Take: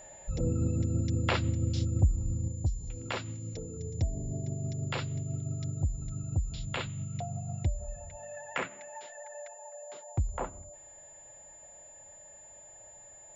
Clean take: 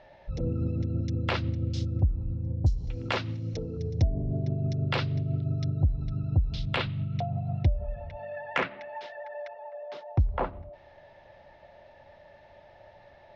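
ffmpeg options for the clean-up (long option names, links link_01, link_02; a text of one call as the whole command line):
ffmpeg -i in.wav -af "bandreject=frequency=7100:width=30,asetnsamples=nb_out_samples=441:pad=0,asendcmd='2.48 volume volume 6dB',volume=0dB" out.wav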